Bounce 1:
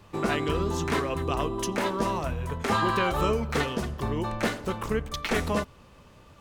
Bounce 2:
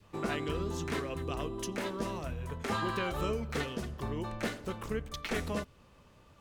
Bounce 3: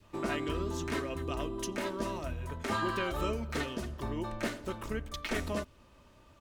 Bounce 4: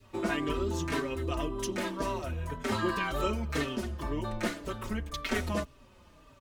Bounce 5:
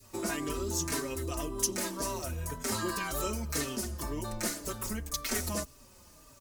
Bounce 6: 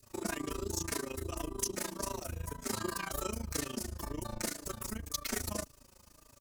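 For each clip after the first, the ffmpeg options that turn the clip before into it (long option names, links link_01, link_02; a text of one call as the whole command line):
ffmpeg -i in.wav -af "adynamicequalizer=threshold=0.00708:dfrequency=950:dqfactor=1.6:tfrequency=950:tqfactor=1.6:attack=5:release=100:ratio=0.375:range=3:mode=cutabove:tftype=bell,volume=-7dB" out.wav
ffmpeg -i in.wav -af "aecho=1:1:3.2:0.38" out.wav
ffmpeg -i in.wav -filter_complex "[0:a]asplit=2[link_01][link_02];[link_02]adelay=4.7,afreqshift=-1.9[link_03];[link_01][link_03]amix=inputs=2:normalize=1,volume=5.5dB" out.wav
ffmpeg -i in.wav -filter_complex "[0:a]asplit=2[link_01][link_02];[link_02]alimiter=level_in=4dB:limit=-24dB:level=0:latency=1:release=105,volume=-4dB,volume=-0.5dB[link_03];[link_01][link_03]amix=inputs=2:normalize=0,aexciter=amount=6.9:drive=3.2:freq=4700,volume=-7dB" out.wav
ffmpeg -i in.wav -af "tremolo=f=27:d=0.919" out.wav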